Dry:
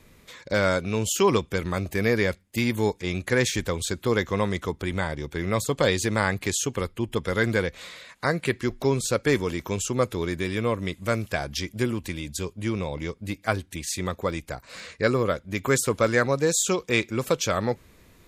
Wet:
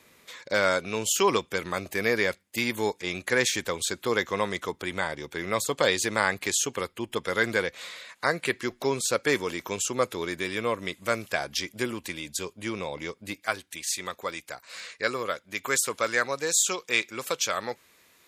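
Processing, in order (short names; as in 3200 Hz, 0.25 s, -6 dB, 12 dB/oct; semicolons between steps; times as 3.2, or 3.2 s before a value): HPF 560 Hz 6 dB/oct, from 13.4 s 1300 Hz; gain +1.5 dB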